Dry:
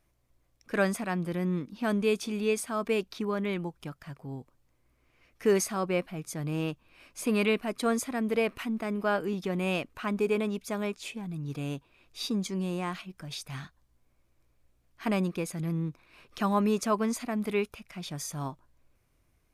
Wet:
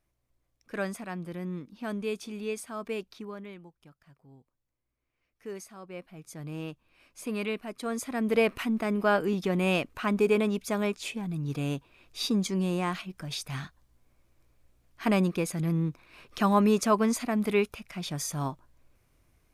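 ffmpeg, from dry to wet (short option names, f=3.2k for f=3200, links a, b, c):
-af "volume=13dB,afade=t=out:st=2.99:d=0.62:silence=0.334965,afade=t=in:st=5.86:d=0.57:silence=0.334965,afade=t=in:st=7.89:d=0.51:silence=0.334965"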